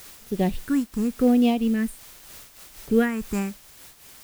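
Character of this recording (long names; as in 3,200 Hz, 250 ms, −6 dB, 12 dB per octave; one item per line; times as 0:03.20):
phaser sweep stages 4, 0.83 Hz, lowest notch 540–1,500 Hz
a quantiser's noise floor 8 bits, dither triangular
amplitude modulation by smooth noise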